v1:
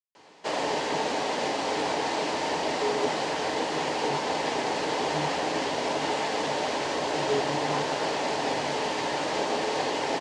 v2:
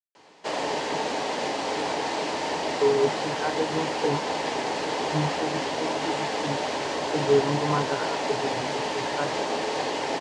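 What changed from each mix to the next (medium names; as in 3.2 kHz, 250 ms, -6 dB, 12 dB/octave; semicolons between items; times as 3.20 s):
speech +9.5 dB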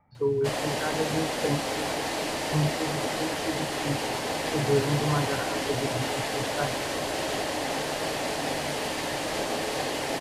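speech: entry -2.60 s; master: remove cabinet simulation 110–7200 Hz, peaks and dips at 120 Hz -7 dB, 420 Hz +4 dB, 920 Hz +7 dB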